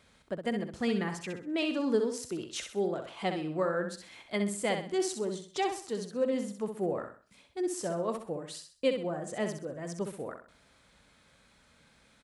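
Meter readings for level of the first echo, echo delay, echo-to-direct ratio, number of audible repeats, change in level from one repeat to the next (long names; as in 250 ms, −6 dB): −7.0 dB, 64 ms, −6.5 dB, 4, −9.0 dB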